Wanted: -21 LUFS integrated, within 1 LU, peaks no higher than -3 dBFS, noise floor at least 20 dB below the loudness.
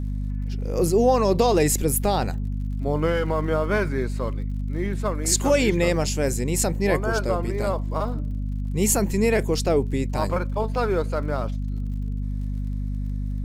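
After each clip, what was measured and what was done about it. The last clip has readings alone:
tick rate 51 per s; hum 50 Hz; highest harmonic 250 Hz; hum level -24 dBFS; loudness -24.0 LUFS; peak level -7.0 dBFS; loudness target -21.0 LUFS
-> de-click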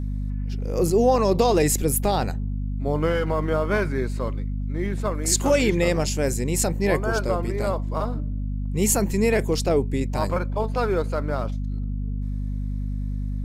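tick rate 0.074 per s; hum 50 Hz; highest harmonic 250 Hz; hum level -24 dBFS
-> de-hum 50 Hz, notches 5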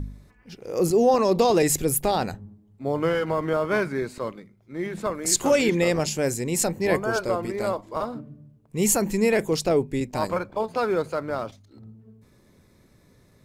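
hum not found; loudness -24.0 LUFS; peak level -7.0 dBFS; loudness target -21.0 LUFS
-> trim +3 dB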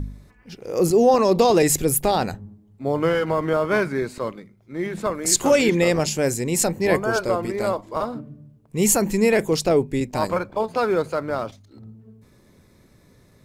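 loudness -21.0 LUFS; peak level -4.0 dBFS; noise floor -55 dBFS

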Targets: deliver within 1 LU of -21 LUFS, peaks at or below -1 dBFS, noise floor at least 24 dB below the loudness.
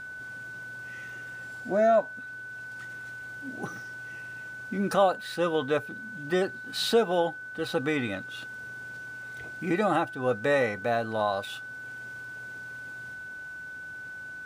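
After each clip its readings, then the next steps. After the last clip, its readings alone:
steady tone 1.5 kHz; tone level -38 dBFS; loudness -30.5 LUFS; peak level -11.5 dBFS; loudness target -21.0 LUFS
-> band-stop 1.5 kHz, Q 30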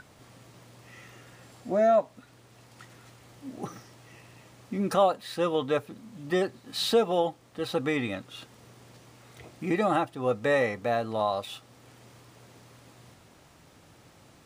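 steady tone not found; loudness -28.0 LUFS; peak level -12.0 dBFS; loudness target -21.0 LUFS
-> trim +7 dB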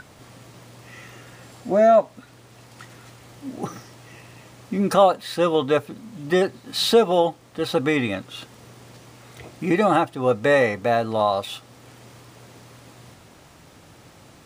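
loudness -21.0 LUFS; peak level -5.0 dBFS; noise floor -50 dBFS

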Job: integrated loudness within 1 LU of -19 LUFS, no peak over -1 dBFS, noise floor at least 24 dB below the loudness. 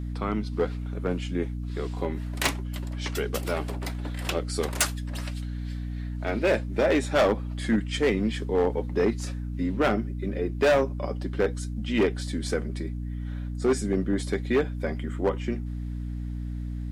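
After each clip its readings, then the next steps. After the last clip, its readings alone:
clipped samples 1.2%; clipping level -16.5 dBFS; hum 60 Hz; highest harmonic 300 Hz; hum level -30 dBFS; loudness -28.0 LUFS; peak level -16.5 dBFS; loudness target -19.0 LUFS
-> clip repair -16.5 dBFS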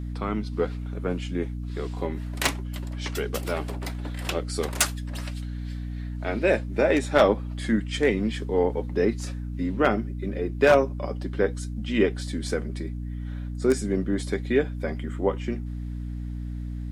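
clipped samples 0.0%; hum 60 Hz; highest harmonic 300 Hz; hum level -30 dBFS
-> hum notches 60/120/180/240/300 Hz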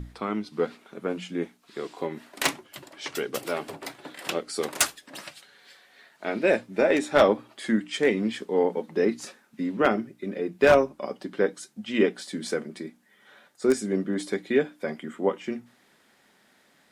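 hum not found; loudness -27.0 LUFS; peak level -6.5 dBFS; loudness target -19.0 LUFS
-> trim +8 dB; peak limiter -1 dBFS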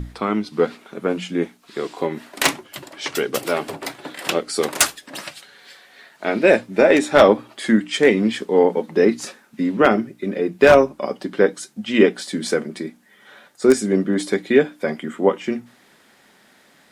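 loudness -19.5 LUFS; peak level -1.0 dBFS; noise floor -54 dBFS

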